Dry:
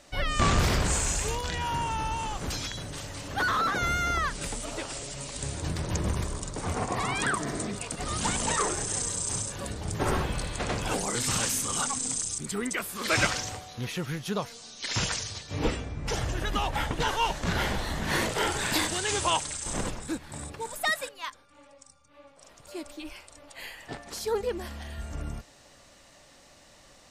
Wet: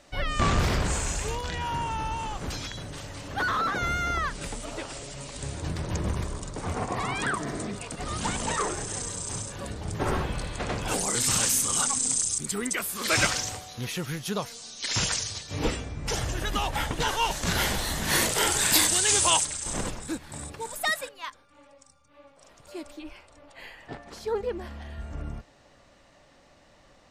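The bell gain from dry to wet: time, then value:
bell 14000 Hz 2 oct
-5 dB
from 10.88 s +6.5 dB
from 17.31 s +14 dB
from 19.45 s +2.5 dB
from 21.01 s -4.5 dB
from 22.99 s -14.5 dB

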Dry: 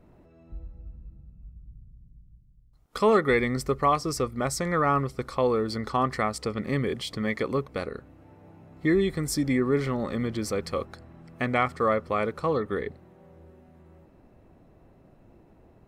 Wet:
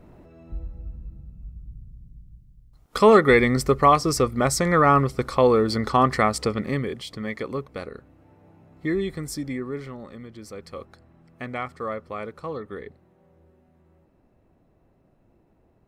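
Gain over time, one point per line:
6.44 s +6.5 dB
6.96 s -2.5 dB
9.16 s -2.5 dB
10.28 s -12.5 dB
10.87 s -6.5 dB

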